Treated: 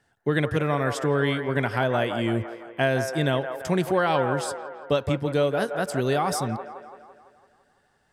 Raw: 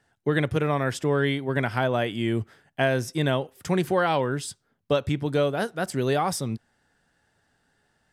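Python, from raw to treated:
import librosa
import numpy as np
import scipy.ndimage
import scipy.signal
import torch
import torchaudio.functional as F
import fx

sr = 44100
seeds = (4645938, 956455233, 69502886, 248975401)

y = fx.echo_wet_bandpass(x, sr, ms=168, feedback_pct=58, hz=910.0, wet_db=-6.0)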